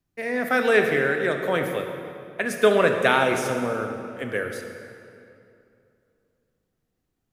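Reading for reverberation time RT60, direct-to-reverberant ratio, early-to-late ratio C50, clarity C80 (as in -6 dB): 2.6 s, 4.0 dB, 5.0 dB, 6.0 dB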